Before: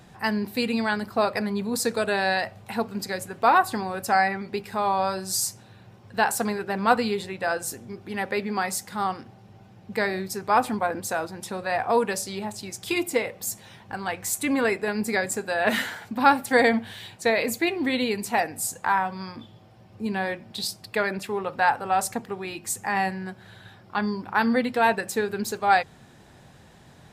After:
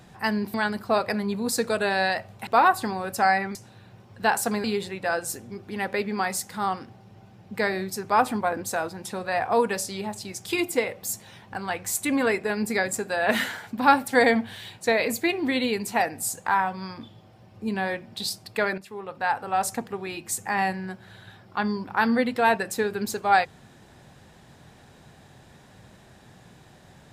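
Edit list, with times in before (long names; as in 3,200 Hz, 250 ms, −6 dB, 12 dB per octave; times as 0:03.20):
0:00.54–0:00.81: remove
0:02.74–0:03.37: remove
0:04.45–0:05.49: remove
0:06.58–0:07.02: remove
0:21.16–0:22.14: fade in, from −13 dB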